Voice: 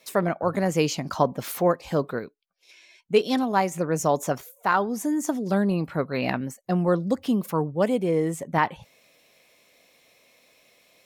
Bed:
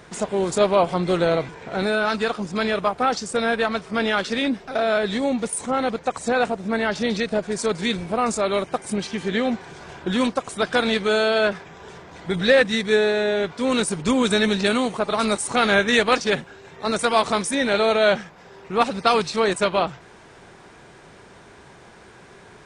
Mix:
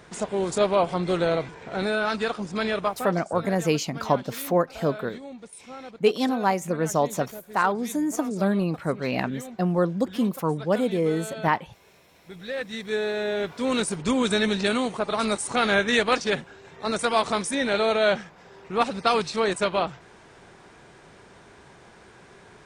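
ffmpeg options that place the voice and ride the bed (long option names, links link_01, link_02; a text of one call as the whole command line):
ffmpeg -i stem1.wav -i stem2.wav -filter_complex "[0:a]adelay=2900,volume=-0.5dB[link_01];[1:a]volume=11dB,afade=type=out:start_time=2.86:duration=0.27:silence=0.188365,afade=type=in:start_time=12.48:duration=1.07:silence=0.188365[link_02];[link_01][link_02]amix=inputs=2:normalize=0" out.wav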